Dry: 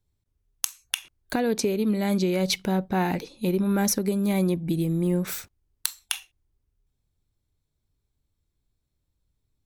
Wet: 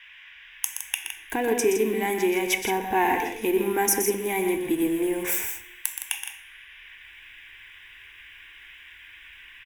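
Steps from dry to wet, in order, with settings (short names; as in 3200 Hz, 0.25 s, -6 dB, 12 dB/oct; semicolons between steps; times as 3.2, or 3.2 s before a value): G.711 law mismatch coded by mu; low shelf 300 Hz -7.5 dB; AGC gain up to 12 dB; band noise 1300–3700 Hz -42 dBFS; fixed phaser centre 870 Hz, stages 8; loudspeakers at several distances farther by 42 m -8 dB, 56 m -9 dB; reverb, pre-delay 3 ms, DRR 11.5 dB; gain -4 dB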